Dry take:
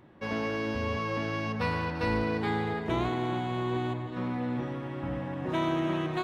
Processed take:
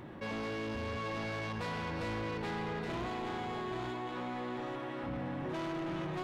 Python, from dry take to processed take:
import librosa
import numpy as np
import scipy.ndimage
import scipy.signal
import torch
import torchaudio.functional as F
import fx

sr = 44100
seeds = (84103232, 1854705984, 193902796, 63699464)

y = fx.peak_eq(x, sr, hz=120.0, db=-14.5, octaves=2.3, at=(3.07, 5.07))
y = 10.0 ** (-32.5 / 20.0) * np.tanh(y / 10.0 ** (-32.5 / 20.0))
y = y + 10.0 ** (-6.0 / 20.0) * np.pad(y, (int(823 * sr / 1000.0), 0))[:len(y)]
y = fx.env_flatten(y, sr, amount_pct=50)
y = F.gain(torch.from_numpy(y), -3.5).numpy()